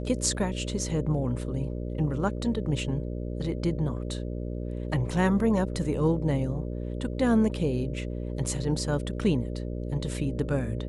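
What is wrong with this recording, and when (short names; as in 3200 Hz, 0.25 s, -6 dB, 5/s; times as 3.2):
buzz 60 Hz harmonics 10 -33 dBFS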